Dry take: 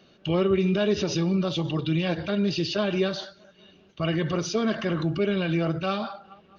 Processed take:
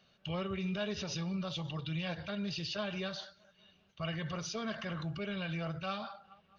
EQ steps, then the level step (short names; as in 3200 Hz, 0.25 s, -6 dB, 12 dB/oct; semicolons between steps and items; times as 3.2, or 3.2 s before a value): bell 330 Hz -14 dB 0.98 oct; -8.0 dB